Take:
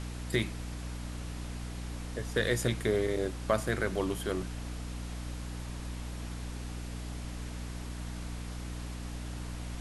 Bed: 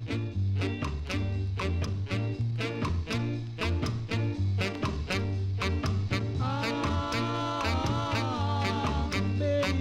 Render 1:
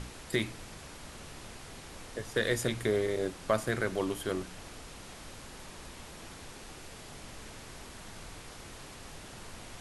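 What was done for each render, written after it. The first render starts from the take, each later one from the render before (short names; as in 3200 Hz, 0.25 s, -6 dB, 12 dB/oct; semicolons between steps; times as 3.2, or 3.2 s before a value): de-hum 60 Hz, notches 5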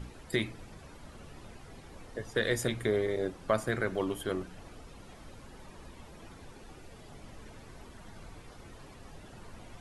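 denoiser 11 dB, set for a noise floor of -48 dBFS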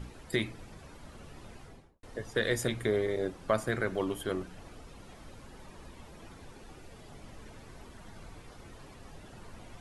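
1.6–2.03 studio fade out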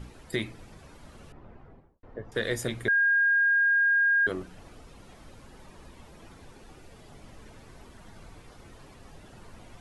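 1.32–2.32 LPF 1400 Hz; 2.88–4.27 bleep 1620 Hz -19.5 dBFS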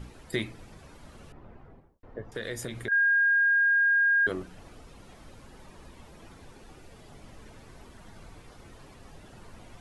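2.26–2.92 compressor 2.5:1, threshold -33 dBFS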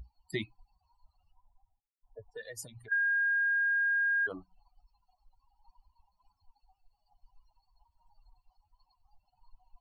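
per-bin expansion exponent 3; compressor 3:1, threshold -29 dBFS, peak gain reduction 5.5 dB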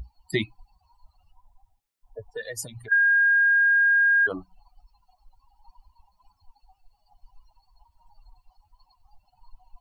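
gain +9.5 dB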